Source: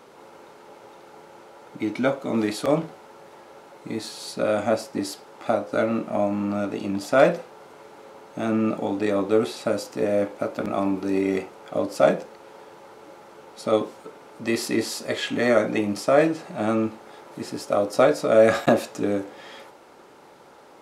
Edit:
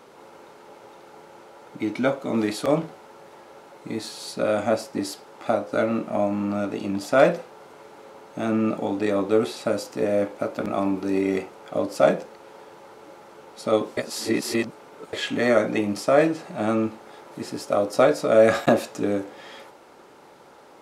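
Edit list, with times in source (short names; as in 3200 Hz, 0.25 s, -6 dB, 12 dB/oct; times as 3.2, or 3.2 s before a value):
13.97–15.13 reverse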